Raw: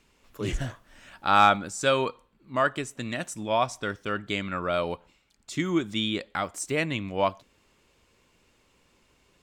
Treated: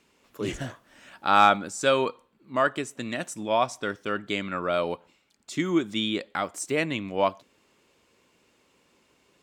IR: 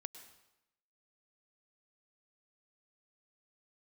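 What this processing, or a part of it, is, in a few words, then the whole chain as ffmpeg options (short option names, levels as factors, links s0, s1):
filter by subtraction: -filter_complex "[0:a]asplit=2[s0][s1];[s1]lowpass=290,volume=-1[s2];[s0][s2]amix=inputs=2:normalize=0"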